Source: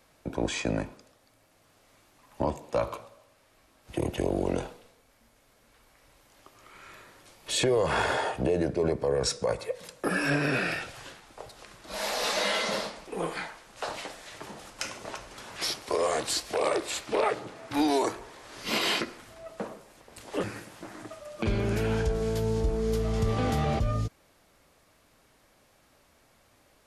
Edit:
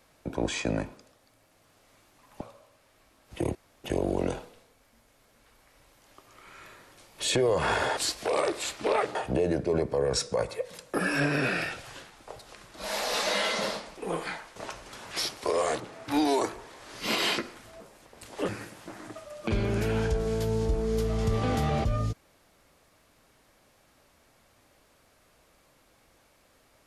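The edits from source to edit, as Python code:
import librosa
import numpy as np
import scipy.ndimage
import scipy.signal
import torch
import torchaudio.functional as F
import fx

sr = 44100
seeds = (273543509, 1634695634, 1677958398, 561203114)

y = fx.edit(x, sr, fx.cut(start_s=2.41, length_s=0.57),
    fx.insert_room_tone(at_s=4.12, length_s=0.29),
    fx.cut(start_s=13.66, length_s=1.35),
    fx.move(start_s=16.25, length_s=1.18, to_s=8.25),
    fx.cut(start_s=19.43, length_s=0.32), tone=tone)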